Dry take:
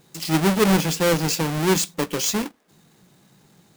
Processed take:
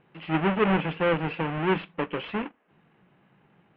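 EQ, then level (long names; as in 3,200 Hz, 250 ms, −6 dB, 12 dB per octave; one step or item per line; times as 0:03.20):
elliptic low-pass filter 2,900 Hz, stop band 60 dB
high-frequency loss of the air 170 metres
low-shelf EQ 480 Hz −6 dB
0.0 dB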